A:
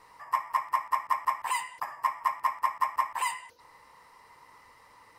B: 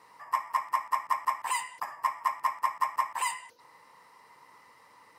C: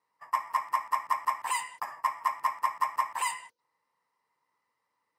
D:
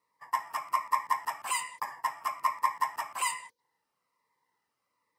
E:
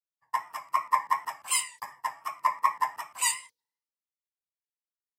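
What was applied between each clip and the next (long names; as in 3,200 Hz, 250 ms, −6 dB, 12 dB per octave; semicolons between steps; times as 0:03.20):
Chebyshev high-pass filter 160 Hz, order 2; dynamic equaliser 7,100 Hz, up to +4 dB, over −53 dBFS, Q 0.97
noise gate −46 dBFS, range −23 dB
phaser whose notches keep moving one way falling 1.2 Hz; level +2.5 dB
pitch vibrato 2.7 Hz 56 cents; multiband upward and downward expander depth 100%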